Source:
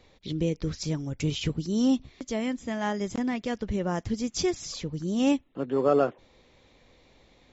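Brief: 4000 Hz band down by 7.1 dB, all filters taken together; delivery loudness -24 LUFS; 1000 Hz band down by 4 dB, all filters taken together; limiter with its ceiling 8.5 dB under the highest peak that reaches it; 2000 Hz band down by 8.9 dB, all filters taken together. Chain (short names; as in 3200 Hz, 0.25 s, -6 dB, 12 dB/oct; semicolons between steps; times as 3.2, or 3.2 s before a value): bell 1000 Hz -3.5 dB; bell 2000 Hz -8.5 dB; bell 4000 Hz -7 dB; gain +8 dB; limiter -13.5 dBFS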